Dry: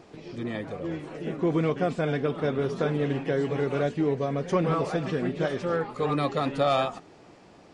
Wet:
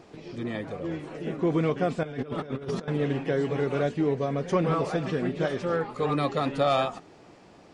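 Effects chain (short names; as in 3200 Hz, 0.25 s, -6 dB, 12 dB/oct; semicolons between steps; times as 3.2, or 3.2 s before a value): 2.03–2.88 negative-ratio compressor -32 dBFS, ratio -0.5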